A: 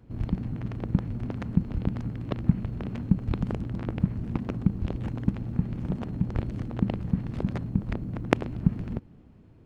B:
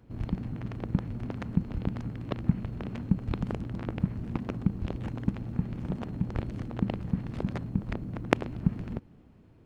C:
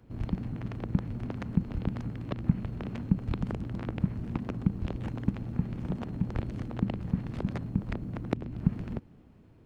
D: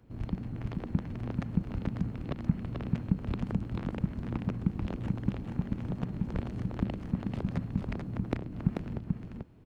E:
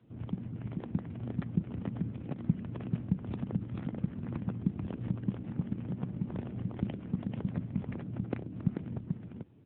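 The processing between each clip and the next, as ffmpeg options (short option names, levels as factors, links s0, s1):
-af "lowshelf=f=330:g=-4"
-filter_complex "[0:a]acrossover=split=310[s0][s1];[s1]acompressor=threshold=0.0178:ratio=8[s2];[s0][s2]amix=inputs=2:normalize=0"
-af "aecho=1:1:438:0.668,volume=0.75"
-af "volume=0.841" -ar 8000 -c:a libopencore_amrnb -b:a 7950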